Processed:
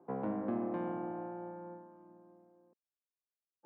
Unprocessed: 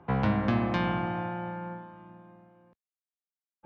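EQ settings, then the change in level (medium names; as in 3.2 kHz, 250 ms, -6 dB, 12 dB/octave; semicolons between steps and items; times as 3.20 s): ladder band-pass 420 Hz, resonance 30%; +5.5 dB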